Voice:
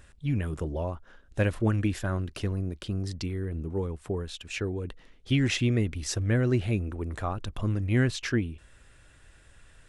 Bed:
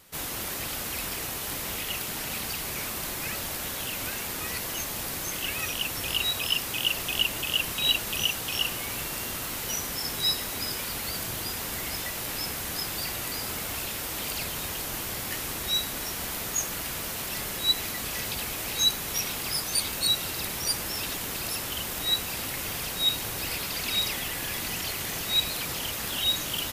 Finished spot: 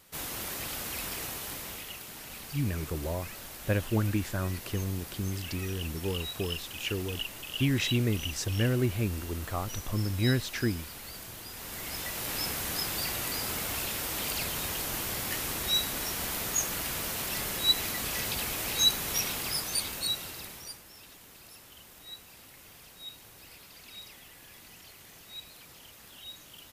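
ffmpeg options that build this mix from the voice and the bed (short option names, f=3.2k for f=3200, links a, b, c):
-filter_complex "[0:a]adelay=2300,volume=-2.5dB[a];[1:a]volume=7dB,afade=t=out:st=1.24:d=0.73:silence=0.421697,afade=t=in:st=11.5:d=0.91:silence=0.298538,afade=t=out:st=19.16:d=1.66:silence=0.112202[b];[a][b]amix=inputs=2:normalize=0"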